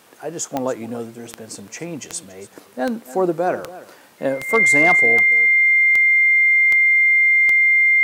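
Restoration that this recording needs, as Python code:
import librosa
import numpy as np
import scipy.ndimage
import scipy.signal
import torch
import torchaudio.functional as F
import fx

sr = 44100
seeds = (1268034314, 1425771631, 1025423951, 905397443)

y = fx.fix_declip(x, sr, threshold_db=-6.5)
y = fx.fix_declick_ar(y, sr, threshold=10.0)
y = fx.notch(y, sr, hz=2100.0, q=30.0)
y = fx.fix_echo_inverse(y, sr, delay_ms=282, level_db=-17.0)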